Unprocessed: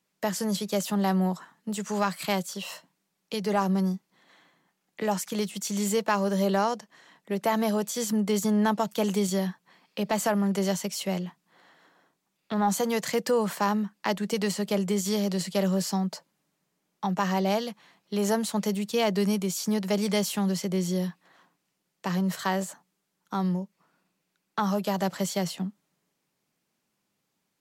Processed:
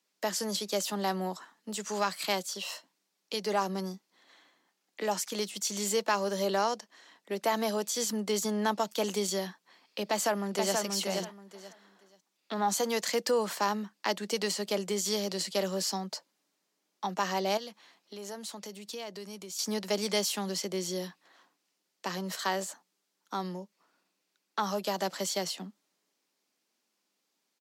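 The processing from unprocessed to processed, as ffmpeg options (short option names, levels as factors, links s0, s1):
-filter_complex "[0:a]asplit=2[s0][s1];[s1]afade=t=in:st=10.04:d=0.01,afade=t=out:st=10.76:d=0.01,aecho=0:1:480|960|1440:0.668344|0.133669|0.0267338[s2];[s0][s2]amix=inputs=2:normalize=0,asettb=1/sr,asplit=3[s3][s4][s5];[s3]atrim=end=17.574[s6];[s4]atrim=start=17.57:end=19.59,asetpts=PTS-STARTPTS,afade=t=in:d=0.004:c=qsin,afade=t=out:st=2.016:d=0.004:c=qsin,acompressor=threshold=0.0126:ratio=3:attack=3.2:release=140:knee=1:detection=peak[s7];[s5]atrim=start=19.586[s8];[s6][s7]acrossfade=d=0.004:c1=hsin:c2=qsin[s9];[s9][s8]acrossfade=d=0.004:c1=qsin:c2=hsin,highpass=f=240:w=0.5412,highpass=f=240:w=1.3066,equalizer=f=4900:w=1:g=6,volume=0.708"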